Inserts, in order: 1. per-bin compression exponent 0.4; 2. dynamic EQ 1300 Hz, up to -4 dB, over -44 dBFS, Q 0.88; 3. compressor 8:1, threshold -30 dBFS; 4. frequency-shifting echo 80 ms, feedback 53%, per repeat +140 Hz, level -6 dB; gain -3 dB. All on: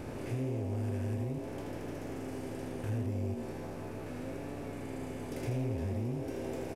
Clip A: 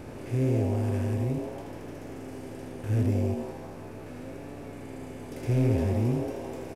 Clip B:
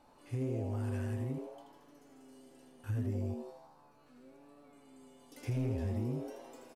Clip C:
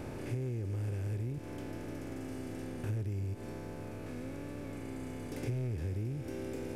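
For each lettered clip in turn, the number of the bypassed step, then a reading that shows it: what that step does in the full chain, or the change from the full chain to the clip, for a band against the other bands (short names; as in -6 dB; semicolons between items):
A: 3, mean gain reduction 3.0 dB; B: 1, 125 Hz band +4.0 dB; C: 4, echo-to-direct -4.5 dB to none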